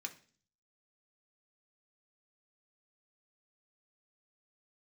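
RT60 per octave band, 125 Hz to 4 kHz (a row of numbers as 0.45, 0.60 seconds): 0.75, 0.65, 0.45, 0.40, 0.40, 0.50 seconds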